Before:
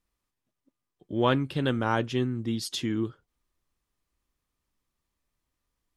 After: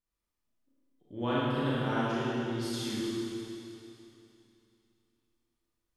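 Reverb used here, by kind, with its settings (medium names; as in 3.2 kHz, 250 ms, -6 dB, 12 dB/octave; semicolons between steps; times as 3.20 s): Schroeder reverb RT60 2.9 s, combs from 26 ms, DRR -9 dB; trim -13 dB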